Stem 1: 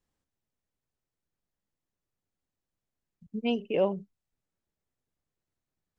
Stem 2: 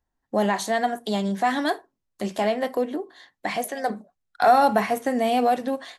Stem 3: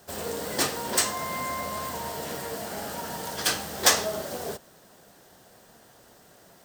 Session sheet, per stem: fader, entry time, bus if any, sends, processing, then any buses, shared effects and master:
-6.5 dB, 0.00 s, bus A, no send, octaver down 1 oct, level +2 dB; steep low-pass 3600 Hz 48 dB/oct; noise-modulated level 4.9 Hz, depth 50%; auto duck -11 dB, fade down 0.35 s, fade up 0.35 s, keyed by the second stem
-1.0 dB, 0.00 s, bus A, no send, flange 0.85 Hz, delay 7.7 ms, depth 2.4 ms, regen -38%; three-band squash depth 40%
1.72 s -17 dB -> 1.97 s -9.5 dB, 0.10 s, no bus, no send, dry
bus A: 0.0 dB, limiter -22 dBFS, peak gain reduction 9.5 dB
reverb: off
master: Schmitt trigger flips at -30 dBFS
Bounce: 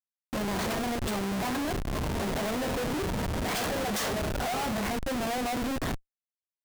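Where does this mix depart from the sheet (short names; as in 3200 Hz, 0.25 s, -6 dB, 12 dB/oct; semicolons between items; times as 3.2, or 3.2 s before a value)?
stem 2 -1.0 dB -> +7.5 dB; stem 3 -17.0 dB -> -9.5 dB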